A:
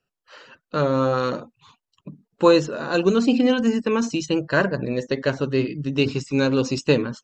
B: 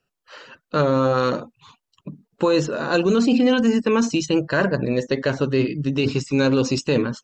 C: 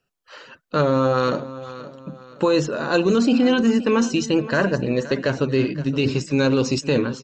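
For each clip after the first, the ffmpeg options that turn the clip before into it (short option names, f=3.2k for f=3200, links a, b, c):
-af "alimiter=limit=-13dB:level=0:latency=1:release=19,volume=3.5dB"
-af "aecho=1:1:521|1042|1563:0.168|0.0638|0.0242"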